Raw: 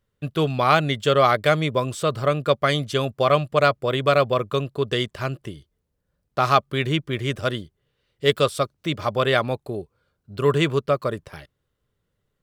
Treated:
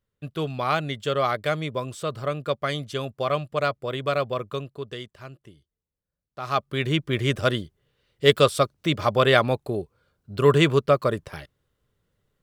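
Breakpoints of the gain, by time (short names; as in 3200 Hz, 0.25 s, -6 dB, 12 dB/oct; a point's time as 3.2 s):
4.52 s -6.5 dB
5.12 s -14.5 dB
6.4 s -14.5 dB
6.6 s -4.5 dB
7.19 s +2 dB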